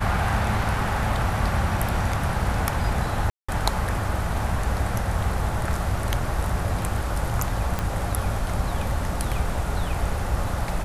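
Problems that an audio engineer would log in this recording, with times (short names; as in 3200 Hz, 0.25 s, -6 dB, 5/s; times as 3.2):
3.3–3.48 gap 0.185 s
7.79 pop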